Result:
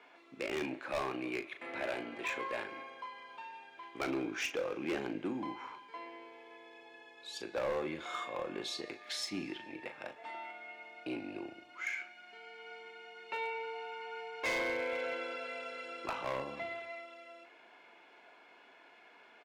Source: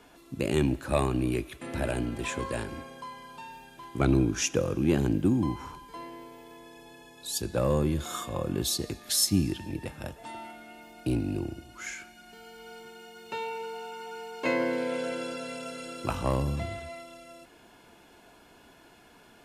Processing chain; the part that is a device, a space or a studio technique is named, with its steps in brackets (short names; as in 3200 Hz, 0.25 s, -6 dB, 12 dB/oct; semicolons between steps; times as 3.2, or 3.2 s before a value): megaphone (BPF 500–3100 Hz; bell 2200 Hz +8.5 dB 0.3 oct; hard clip -28 dBFS, distortion -11 dB; doubler 38 ms -9.5 dB); gain -2.5 dB